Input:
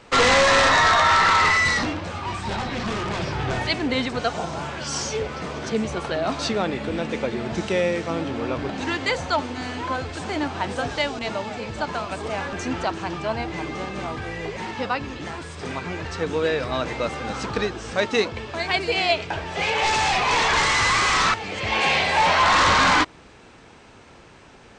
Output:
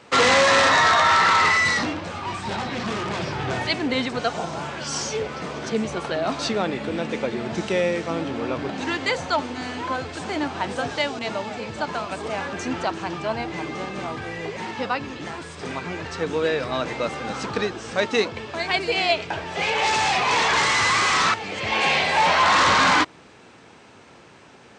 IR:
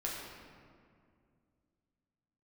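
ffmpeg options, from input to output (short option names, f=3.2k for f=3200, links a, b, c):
-af "highpass=110"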